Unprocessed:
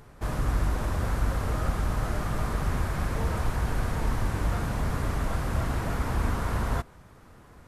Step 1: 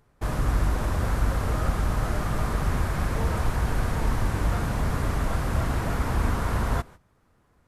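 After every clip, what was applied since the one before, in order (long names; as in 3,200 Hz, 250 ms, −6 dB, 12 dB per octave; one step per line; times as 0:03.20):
noise gate −44 dBFS, range −15 dB
level +2.5 dB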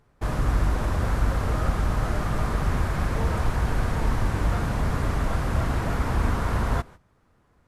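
high-shelf EQ 9,400 Hz −7.5 dB
level +1 dB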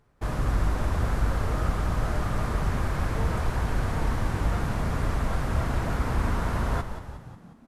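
echo with shifted repeats 180 ms, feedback 56%, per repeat −56 Hz, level −10 dB
level −2.5 dB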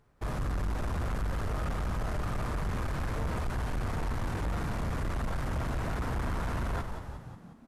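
soft clipping −26 dBFS, distortion −10 dB
level −1.5 dB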